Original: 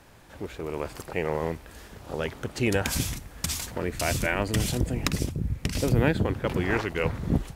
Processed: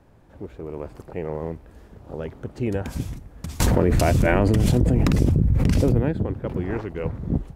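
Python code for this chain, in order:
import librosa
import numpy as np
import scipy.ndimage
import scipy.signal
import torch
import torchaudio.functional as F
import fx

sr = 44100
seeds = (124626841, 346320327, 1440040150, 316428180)

y = fx.tilt_shelf(x, sr, db=8.5, hz=1200.0)
y = fx.env_flatten(y, sr, amount_pct=100, at=(3.6, 5.98))
y = F.gain(torch.from_numpy(y), -7.0).numpy()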